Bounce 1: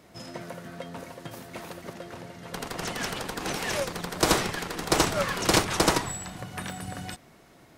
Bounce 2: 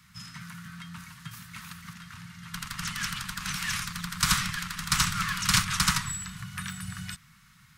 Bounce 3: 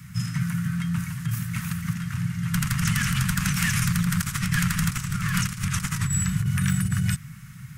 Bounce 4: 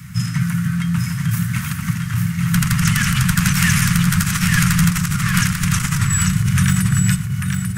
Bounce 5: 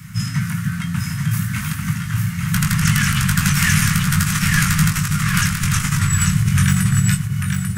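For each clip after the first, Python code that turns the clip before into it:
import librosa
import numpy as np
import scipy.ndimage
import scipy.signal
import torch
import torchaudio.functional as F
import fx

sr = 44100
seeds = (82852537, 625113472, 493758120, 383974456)

y1 = scipy.signal.sosfilt(scipy.signal.cheby1(3, 1.0, [180.0, 1200.0], 'bandstop', fs=sr, output='sos'), x)
y1 = y1 * 10.0 ** (1.5 / 20.0)
y2 = fx.graphic_eq_10(y1, sr, hz=(125, 1000, 4000), db=(11, -8, -10))
y2 = fx.over_compress(y2, sr, threshold_db=-33.0, ratio=-1.0)
y2 = y2 * 10.0 ** (8.5 / 20.0)
y3 = y2 + 10.0 ** (-5.0 / 20.0) * np.pad(y2, (int(844 * sr / 1000.0), 0))[:len(y2)]
y3 = y3 * 10.0 ** (7.0 / 20.0)
y4 = fx.doubler(y3, sr, ms=20.0, db=-5)
y4 = y4 * 10.0 ** (-1.0 / 20.0)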